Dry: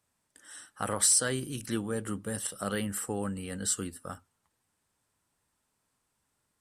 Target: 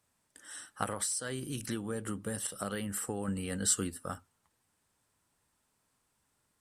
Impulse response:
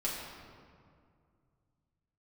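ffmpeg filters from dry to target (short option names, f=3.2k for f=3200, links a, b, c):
-filter_complex "[0:a]asettb=1/sr,asplit=3[a][b][c];[a]atrim=end=0.834[d];[b]atrim=start=0.83:end=3.28,asetpts=PTS-STARTPTS,afade=t=in:d=0.004:c=qsin,afade=t=out:st=2.446:d=0.004:c=qsin,acompressor=threshold=-34dB:ratio=6[e];[c]atrim=start=3.276[f];[d][e]acrossfade=d=0.004:c1=hsin:c2=qsin[g];[g][f]acrossfade=d=0.004:c1=qsin:c2=hsin,volume=1.5dB"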